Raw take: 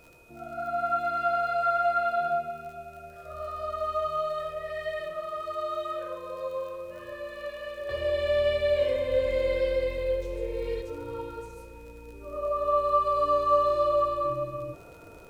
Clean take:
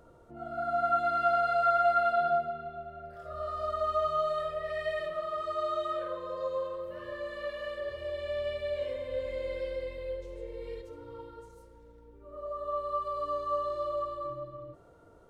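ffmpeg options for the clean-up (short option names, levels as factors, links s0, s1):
-af "adeclick=t=4,bandreject=f=2500:w=30,agate=range=0.0891:threshold=0.0141,asetnsamples=n=441:p=0,asendcmd='7.89 volume volume -9dB',volume=1"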